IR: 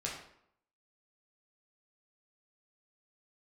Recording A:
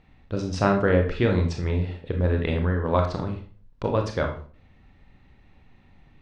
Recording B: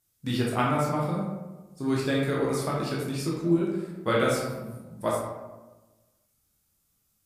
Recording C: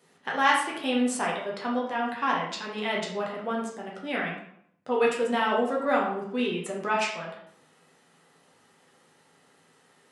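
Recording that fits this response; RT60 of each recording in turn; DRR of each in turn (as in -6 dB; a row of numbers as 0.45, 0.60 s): C; 0.40, 1.2, 0.70 s; 2.5, -4.5, -4.0 dB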